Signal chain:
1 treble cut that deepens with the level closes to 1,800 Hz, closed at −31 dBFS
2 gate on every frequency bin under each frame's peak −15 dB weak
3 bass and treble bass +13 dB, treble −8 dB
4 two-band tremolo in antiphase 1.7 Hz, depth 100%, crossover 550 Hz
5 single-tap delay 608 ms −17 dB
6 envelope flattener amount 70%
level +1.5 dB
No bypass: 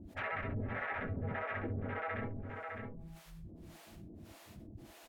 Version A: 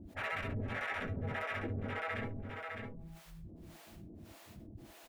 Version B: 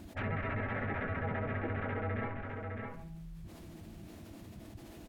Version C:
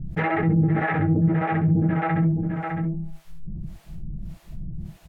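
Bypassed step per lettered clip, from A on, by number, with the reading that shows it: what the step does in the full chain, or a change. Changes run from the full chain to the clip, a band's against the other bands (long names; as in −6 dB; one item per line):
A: 1, 4 kHz band +7.0 dB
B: 4, 4 kHz band −2.5 dB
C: 2, 250 Hz band +8.5 dB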